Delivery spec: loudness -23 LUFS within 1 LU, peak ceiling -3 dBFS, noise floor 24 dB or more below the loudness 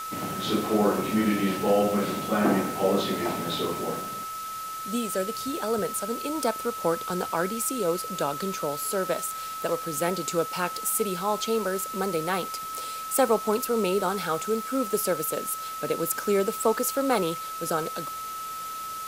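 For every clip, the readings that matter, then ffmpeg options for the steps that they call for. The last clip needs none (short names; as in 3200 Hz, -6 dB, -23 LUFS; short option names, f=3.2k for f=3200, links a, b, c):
steady tone 1300 Hz; tone level -33 dBFS; noise floor -35 dBFS; noise floor target -51 dBFS; loudness -27.0 LUFS; peak -9.0 dBFS; loudness target -23.0 LUFS
-> -af "bandreject=f=1.3k:w=30"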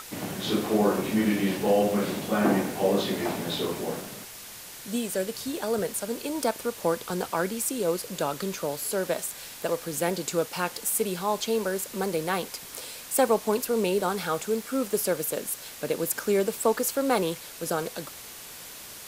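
steady tone none; noise floor -43 dBFS; noise floor target -52 dBFS
-> -af "afftdn=nr=9:nf=-43"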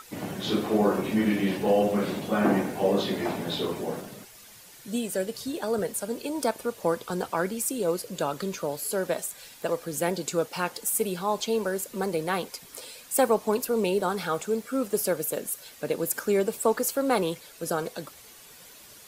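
noise floor -50 dBFS; noise floor target -52 dBFS
-> -af "afftdn=nr=6:nf=-50"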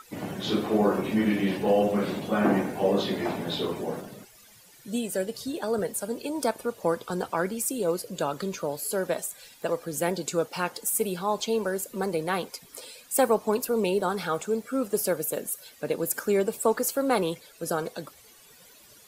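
noise floor -54 dBFS; loudness -28.0 LUFS; peak -10.0 dBFS; loudness target -23.0 LUFS
-> -af "volume=5dB"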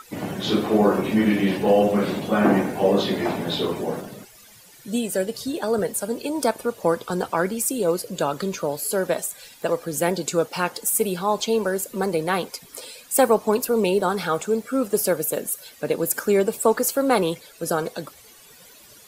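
loudness -23.0 LUFS; peak -5.0 dBFS; noise floor -49 dBFS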